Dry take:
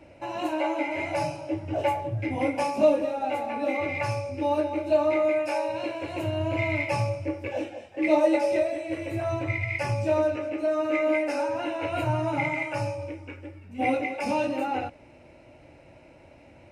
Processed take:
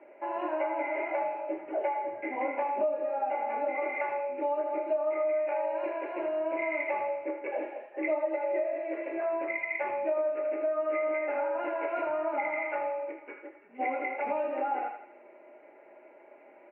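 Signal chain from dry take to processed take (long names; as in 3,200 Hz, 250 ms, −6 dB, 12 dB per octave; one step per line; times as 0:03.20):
Chebyshev band-pass filter 340–2,100 Hz, order 3
high-frequency loss of the air 170 metres
comb filter 4.9 ms, depth 42%
feedback echo with a high-pass in the loop 80 ms, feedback 48%, high-pass 820 Hz, level −6.5 dB
downward compressor 5 to 1, threshold −27 dBFS, peak gain reduction 12.5 dB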